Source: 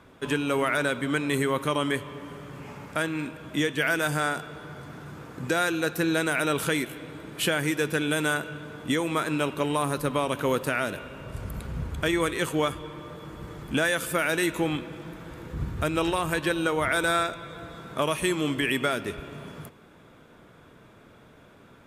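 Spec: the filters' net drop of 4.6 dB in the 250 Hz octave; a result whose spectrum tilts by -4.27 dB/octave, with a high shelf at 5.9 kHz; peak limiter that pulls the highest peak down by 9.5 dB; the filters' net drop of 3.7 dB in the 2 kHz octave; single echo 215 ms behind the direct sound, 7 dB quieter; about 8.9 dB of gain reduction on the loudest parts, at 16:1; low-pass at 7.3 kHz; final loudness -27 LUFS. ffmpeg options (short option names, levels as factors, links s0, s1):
-af "lowpass=7300,equalizer=f=250:t=o:g=-6.5,equalizer=f=2000:t=o:g=-4.5,highshelf=f=5900:g=-5.5,acompressor=threshold=0.0251:ratio=16,alimiter=level_in=1.78:limit=0.0631:level=0:latency=1,volume=0.562,aecho=1:1:215:0.447,volume=3.98"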